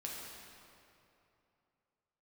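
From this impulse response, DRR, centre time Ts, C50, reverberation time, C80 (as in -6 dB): -3.5 dB, 129 ms, -0.5 dB, 2.9 s, 1.0 dB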